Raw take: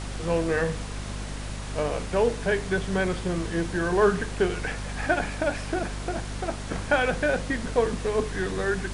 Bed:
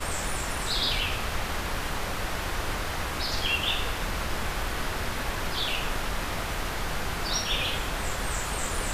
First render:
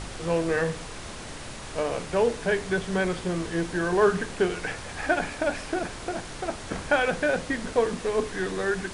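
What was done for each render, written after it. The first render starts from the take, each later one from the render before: de-hum 50 Hz, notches 5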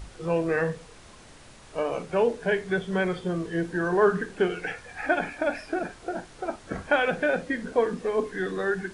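noise print and reduce 11 dB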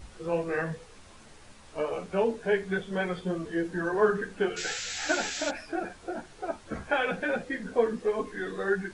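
4.56–5.5 painted sound noise 1300–7800 Hz -33 dBFS; ensemble effect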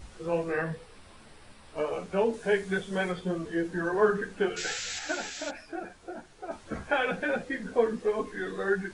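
0.52–1.77 bell 6600 Hz -12.5 dB 0.26 oct; 2.33–3.12 high shelf 5500 Hz +9.5 dB; 4.99–6.51 gain -5 dB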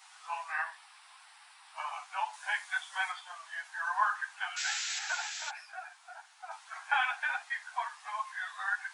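steep high-pass 760 Hz 72 dB/oct; dynamic EQ 1000 Hz, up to +5 dB, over -52 dBFS, Q 5.2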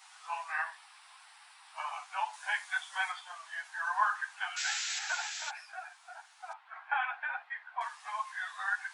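6.53–7.81 air absorption 480 m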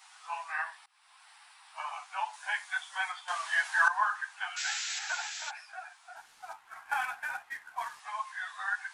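0.86–1.31 fade in, from -22.5 dB; 3.28–3.88 gain +12 dB; 6.16–8 CVSD 64 kbps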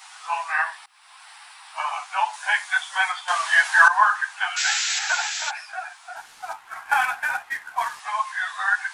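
gain +11.5 dB; limiter -3 dBFS, peak gain reduction 3 dB

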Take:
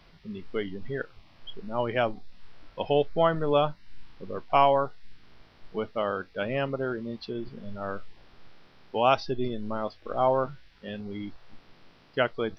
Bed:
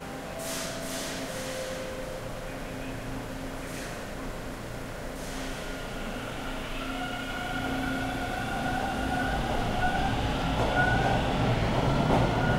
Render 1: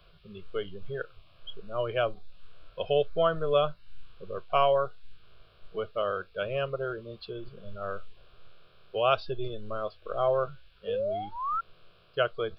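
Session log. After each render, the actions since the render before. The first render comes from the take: 10.87–11.61 painted sound rise 440–1400 Hz -29 dBFS; fixed phaser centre 1300 Hz, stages 8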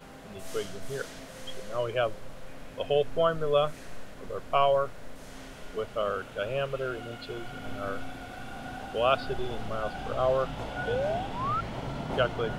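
add bed -10 dB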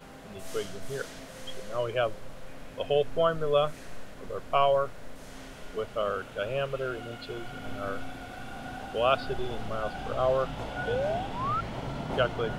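nothing audible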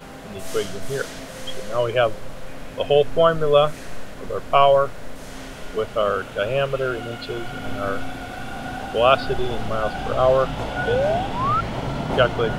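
gain +9 dB

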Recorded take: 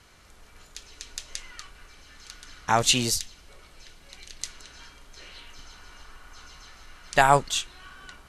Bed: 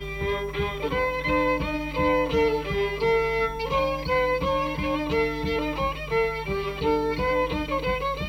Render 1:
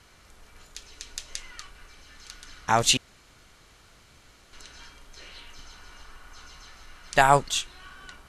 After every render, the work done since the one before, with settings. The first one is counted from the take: 2.97–4.53 room tone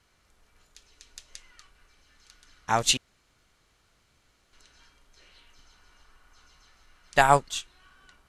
upward expander 1.5:1, over -37 dBFS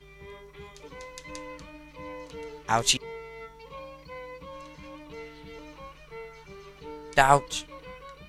add bed -18.5 dB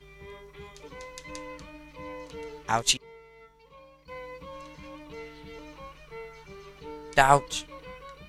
2.71–4.08 upward expander, over -38 dBFS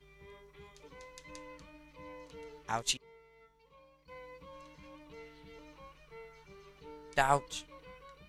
gain -9 dB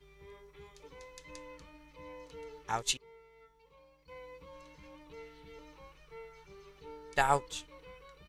comb 2.3 ms, depth 31%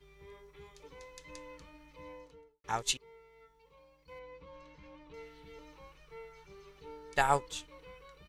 2.03–2.64 studio fade out; 4.19–5.14 air absorption 110 m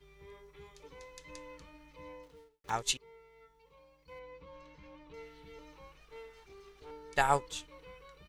2.23–2.7 switching dead time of 0.17 ms; 6–6.91 minimum comb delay 2.5 ms

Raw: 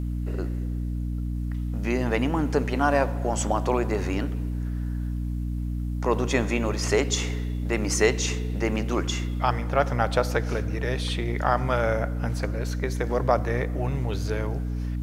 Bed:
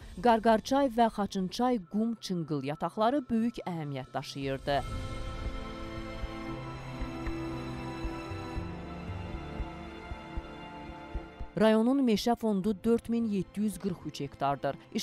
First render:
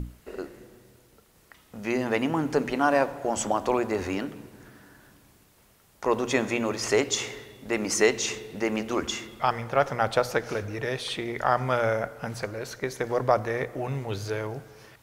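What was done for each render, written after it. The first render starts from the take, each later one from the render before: notches 60/120/180/240/300 Hz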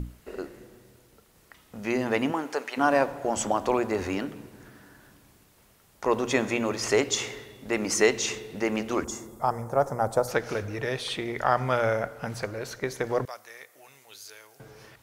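2.31–2.76 HPF 310 Hz -> 960 Hz; 9.04–10.28 EQ curve 940 Hz 0 dB, 2900 Hz -21 dB, 7700 Hz +4 dB; 13.25–14.6 differentiator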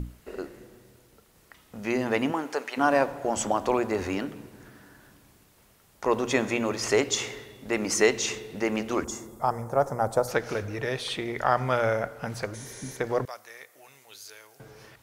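12.57–12.92 spectral repair 310–11000 Hz after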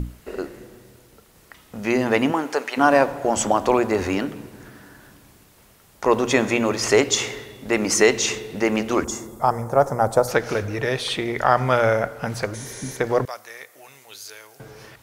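gain +6.5 dB; limiter -3 dBFS, peak gain reduction 2 dB

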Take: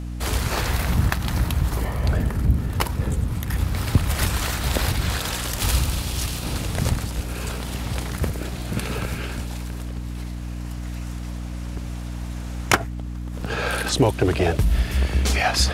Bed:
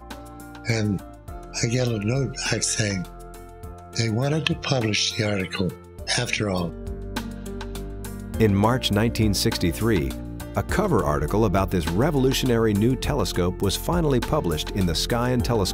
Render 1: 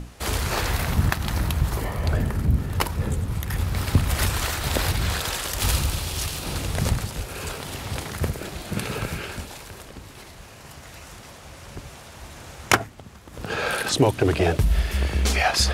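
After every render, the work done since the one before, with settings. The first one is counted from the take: notches 60/120/180/240/300 Hz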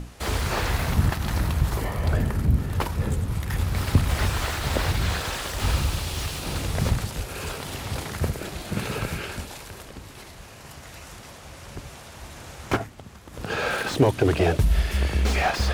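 slew limiter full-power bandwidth 130 Hz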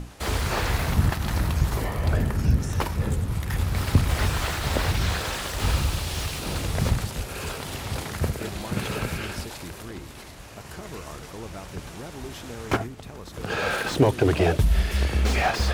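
add bed -18.5 dB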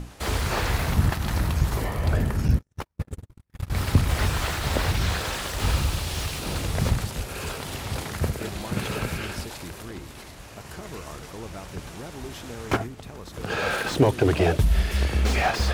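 2.48–3.7 gate -22 dBFS, range -53 dB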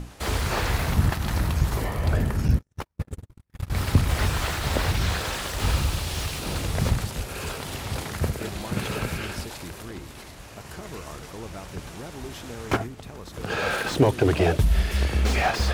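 nothing audible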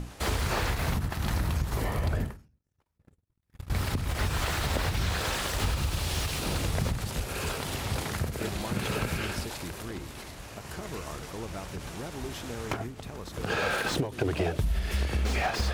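compressor 6:1, threshold -24 dBFS, peak gain reduction 11.5 dB; ending taper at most 140 dB/s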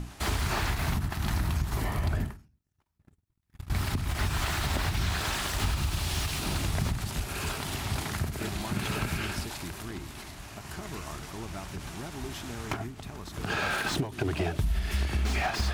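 bell 500 Hz -13.5 dB 0.28 oct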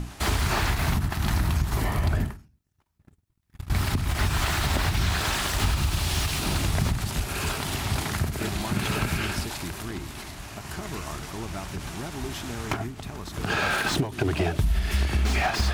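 gain +4.5 dB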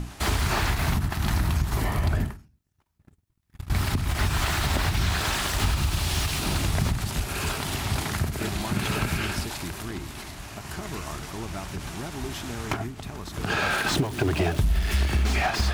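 13.88–15.23 zero-crossing step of -34.5 dBFS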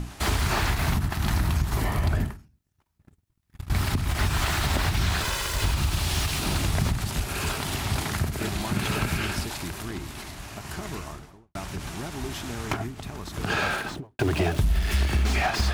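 5.23–5.74 minimum comb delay 2 ms; 10.86–11.55 studio fade out; 13.59–14.19 studio fade out

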